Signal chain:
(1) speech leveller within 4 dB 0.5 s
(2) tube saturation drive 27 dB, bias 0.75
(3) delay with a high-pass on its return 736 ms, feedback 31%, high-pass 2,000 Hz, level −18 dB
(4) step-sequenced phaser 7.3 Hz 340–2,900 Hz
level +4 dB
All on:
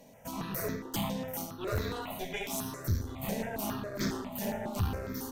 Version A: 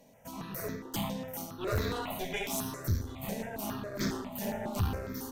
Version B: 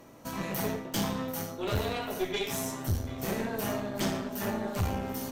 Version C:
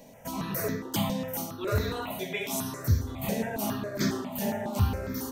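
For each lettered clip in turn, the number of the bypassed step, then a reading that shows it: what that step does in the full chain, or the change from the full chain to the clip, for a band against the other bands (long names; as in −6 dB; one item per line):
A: 1, change in momentary loudness spread +2 LU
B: 4, 125 Hz band −2.0 dB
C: 2, change in crest factor +2.0 dB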